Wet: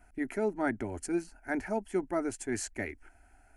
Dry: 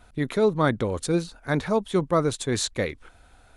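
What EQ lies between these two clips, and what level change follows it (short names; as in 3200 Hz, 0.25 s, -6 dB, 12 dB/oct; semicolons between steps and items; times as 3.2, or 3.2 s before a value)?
fixed phaser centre 750 Hz, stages 8; -5.0 dB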